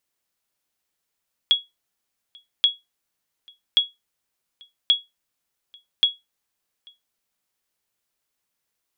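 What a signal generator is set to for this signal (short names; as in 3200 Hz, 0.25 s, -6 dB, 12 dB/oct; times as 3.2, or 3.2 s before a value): sonar ping 3340 Hz, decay 0.19 s, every 1.13 s, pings 5, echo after 0.84 s, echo -30 dB -8.5 dBFS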